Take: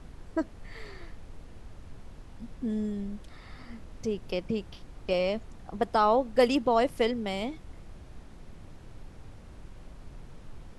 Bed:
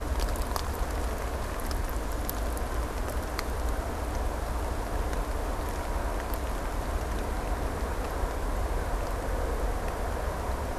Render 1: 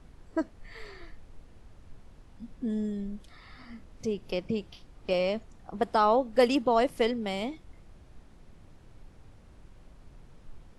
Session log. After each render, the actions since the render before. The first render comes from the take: noise print and reduce 6 dB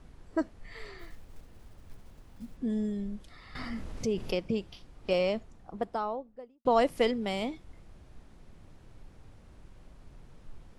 0.99–2.58 s: block-companded coder 5-bit; 3.55–4.35 s: level flattener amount 50%; 5.17–6.65 s: studio fade out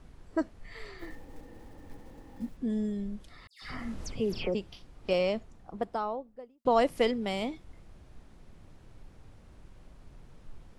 1.02–2.49 s: small resonant body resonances 300/490/810/1800 Hz, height 14 dB, ringing for 35 ms; 3.47–4.55 s: phase dispersion lows, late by 150 ms, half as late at 2.8 kHz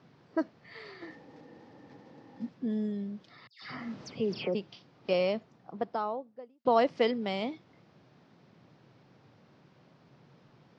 elliptic band-pass 130–5200 Hz, stop band 40 dB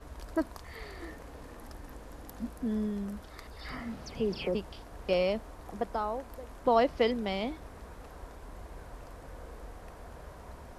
add bed -16 dB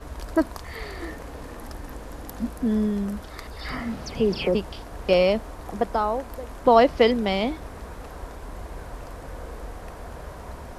trim +9 dB

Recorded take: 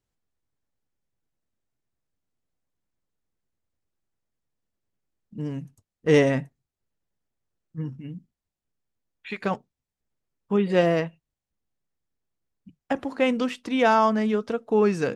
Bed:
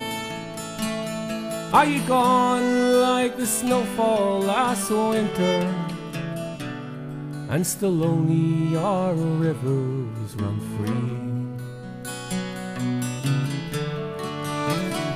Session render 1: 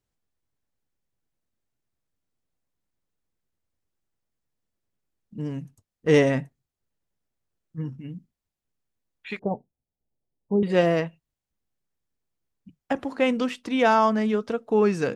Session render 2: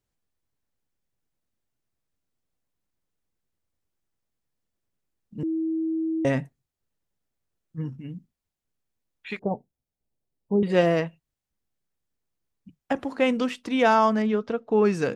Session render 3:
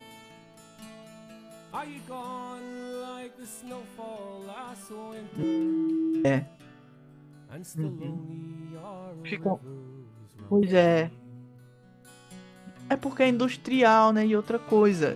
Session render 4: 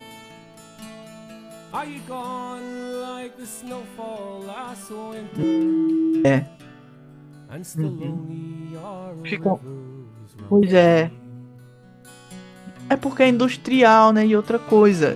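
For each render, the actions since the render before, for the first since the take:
9.39–10.63 s: steep low-pass 860 Hz 48 dB/octave
5.43–6.25 s: bleep 322 Hz -23.5 dBFS; 14.22–14.85 s: distance through air 110 m
add bed -19.5 dB
trim +7 dB; peak limiter -3 dBFS, peak gain reduction 1.5 dB

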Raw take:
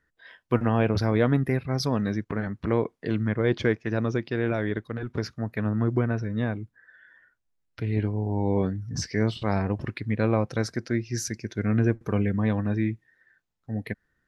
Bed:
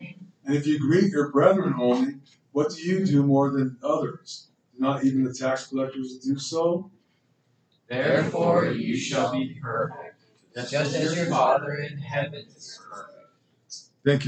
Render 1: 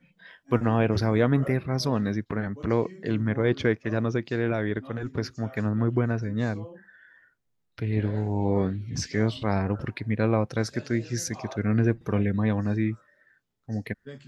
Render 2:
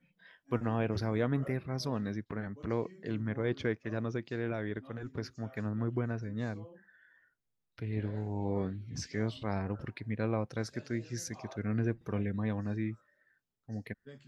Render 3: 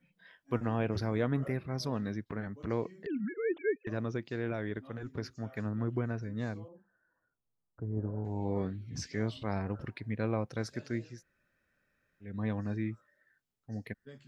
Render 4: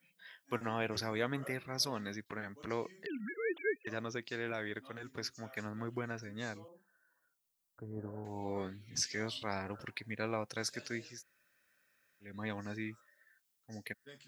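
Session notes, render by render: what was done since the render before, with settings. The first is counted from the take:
add bed -21.5 dB
trim -9 dB
3.06–3.87 s: formants replaced by sine waves; 6.68–8.25 s: steep low-pass 1.3 kHz 48 dB/octave; 11.11–12.32 s: room tone, crossfade 0.24 s
tilt EQ +3.5 dB/octave

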